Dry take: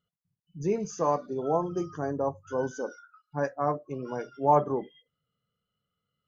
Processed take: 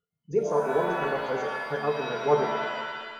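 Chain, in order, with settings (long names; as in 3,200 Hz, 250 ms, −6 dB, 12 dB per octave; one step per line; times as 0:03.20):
hollow resonant body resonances 440/1,400 Hz, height 15 dB, ringing for 95 ms
dynamic equaliser 1,700 Hz, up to +5 dB, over −42 dBFS, Q 1.6
phase-vocoder stretch with locked phases 0.51×
reverb with rising layers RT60 1.5 s, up +7 semitones, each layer −2 dB, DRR 3.5 dB
level −4.5 dB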